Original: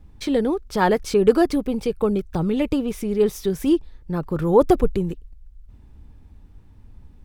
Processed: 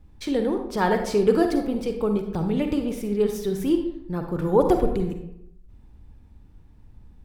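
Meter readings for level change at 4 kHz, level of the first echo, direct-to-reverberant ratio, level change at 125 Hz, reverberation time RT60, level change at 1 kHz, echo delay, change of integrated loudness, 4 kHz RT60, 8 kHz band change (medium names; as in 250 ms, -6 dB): -3.0 dB, no echo, 5.0 dB, -2.5 dB, 0.80 s, -2.5 dB, no echo, -2.5 dB, 0.45 s, -3.5 dB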